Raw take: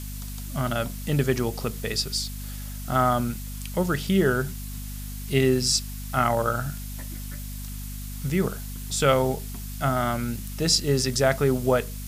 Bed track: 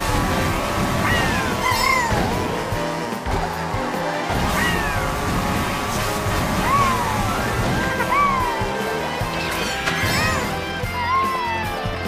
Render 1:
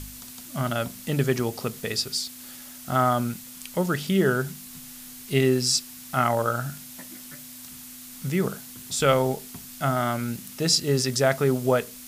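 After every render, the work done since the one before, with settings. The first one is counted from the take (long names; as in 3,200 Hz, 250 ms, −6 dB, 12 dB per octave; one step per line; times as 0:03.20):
hum removal 50 Hz, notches 4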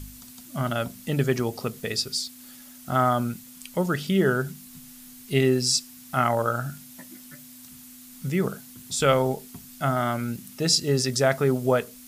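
broadband denoise 6 dB, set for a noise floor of −43 dBFS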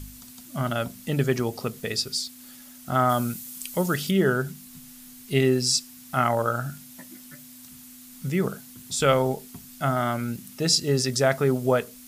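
0:03.09–0:04.11: high-shelf EQ 4,800 Hz +9.5 dB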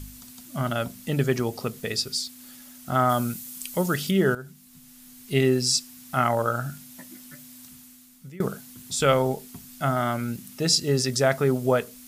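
0:04.35–0:05.41: fade in, from −14 dB
0:07.62–0:08.40: fade out, to −21.5 dB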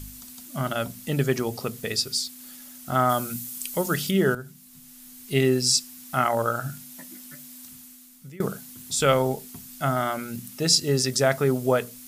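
high-shelf EQ 6,100 Hz +4 dB
mains-hum notches 60/120/180/240 Hz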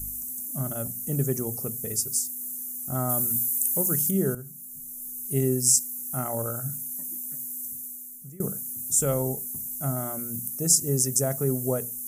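drawn EQ curve 110 Hz 0 dB, 520 Hz −6 dB, 4,300 Hz −25 dB, 6,200 Hz +2 dB, 11,000 Hz +11 dB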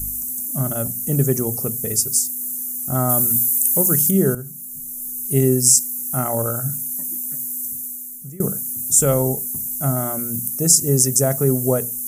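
level +8 dB
brickwall limiter −1 dBFS, peak gain reduction 2.5 dB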